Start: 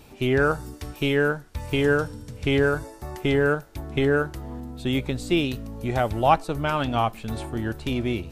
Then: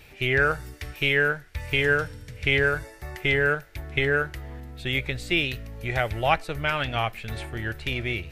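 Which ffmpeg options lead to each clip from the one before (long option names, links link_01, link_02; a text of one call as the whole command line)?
ffmpeg -i in.wav -af "equalizer=frequency=250:width_type=o:width=1:gain=-11,equalizer=frequency=1000:width_type=o:width=1:gain=-8,equalizer=frequency=2000:width_type=o:width=1:gain=11,equalizer=frequency=8000:width_type=o:width=1:gain=-4" out.wav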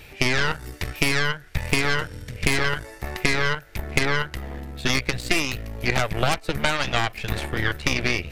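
ffmpeg -i in.wav -af "aeval=exprs='0.531*(cos(1*acos(clip(val(0)/0.531,-1,1)))-cos(1*PI/2))+0.133*(cos(6*acos(clip(val(0)/0.531,-1,1)))-cos(6*PI/2))+0.266*(cos(8*acos(clip(val(0)/0.531,-1,1)))-cos(8*PI/2))':channel_layout=same,acompressor=threshold=-21dB:ratio=10,volume=5dB" out.wav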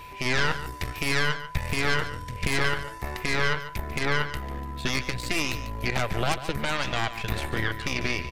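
ffmpeg -i in.wav -af "aeval=exprs='val(0)+0.01*sin(2*PI*1000*n/s)':channel_layout=same,alimiter=limit=-10.5dB:level=0:latency=1:release=99,aecho=1:1:145:0.237,volume=-2dB" out.wav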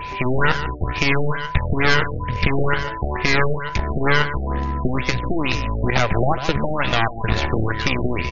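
ffmpeg -i in.wav -filter_complex "[0:a]asplit=2[link_01][link_02];[link_02]acompressor=threshold=-32dB:ratio=12,volume=-0.5dB[link_03];[link_01][link_03]amix=inputs=2:normalize=0,afftfilt=real='re*lt(b*sr/1024,770*pow(7200/770,0.5+0.5*sin(2*PI*2.2*pts/sr)))':imag='im*lt(b*sr/1024,770*pow(7200/770,0.5+0.5*sin(2*PI*2.2*pts/sr)))':win_size=1024:overlap=0.75,volume=7dB" out.wav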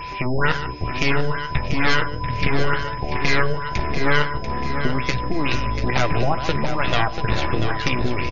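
ffmpeg -i in.wav -filter_complex "[0:a]flanger=delay=5.9:depth=2:regen=-62:speed=0.54:shape=triangular,aeval=exprs='val(0)+0.00447*sin(2*PI*5100*n/s)':channel_layout=same,asplit=2[link_01][link_02];[link_02]aecho=0:1:689|1378|2067|2756|3445|4134:0.355|0.181|0.0923|0.0471|0.024|0.0122[link_03];[link_01][link_03]amix=inputs=2:normalize=0,volume=2dB" out.wav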